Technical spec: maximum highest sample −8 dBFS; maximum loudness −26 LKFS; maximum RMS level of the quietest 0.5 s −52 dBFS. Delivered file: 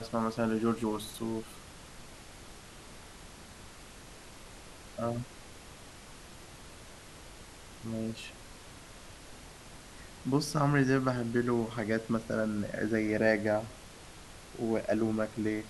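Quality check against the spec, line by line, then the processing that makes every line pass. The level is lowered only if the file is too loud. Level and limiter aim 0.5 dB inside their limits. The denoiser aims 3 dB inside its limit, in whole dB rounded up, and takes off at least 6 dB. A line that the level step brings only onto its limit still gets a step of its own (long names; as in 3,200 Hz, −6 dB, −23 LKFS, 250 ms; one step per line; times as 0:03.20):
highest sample −11.5 dBFS: in spec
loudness −32.0 LKFS: in spec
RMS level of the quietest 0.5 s −50 dBFS: out of spec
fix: broadband denoise 6 dB, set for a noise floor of −50 dBFS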